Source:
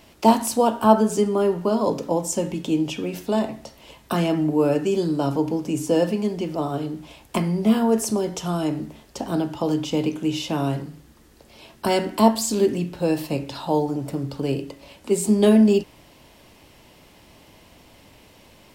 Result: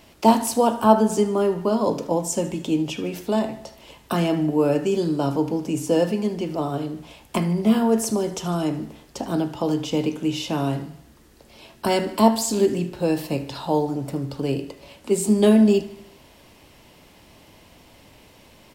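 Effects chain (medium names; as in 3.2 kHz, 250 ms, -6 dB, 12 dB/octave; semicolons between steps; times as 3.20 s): feedback delay 76 ms, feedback 57%, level -17 dB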